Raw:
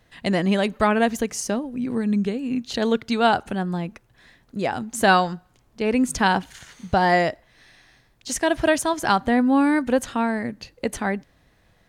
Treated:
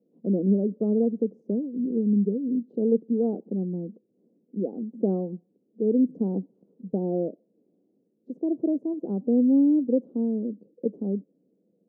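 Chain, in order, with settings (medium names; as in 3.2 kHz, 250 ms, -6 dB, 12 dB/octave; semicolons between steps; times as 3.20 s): elliptic band-pass 190–490 Hz, stop band 60 dB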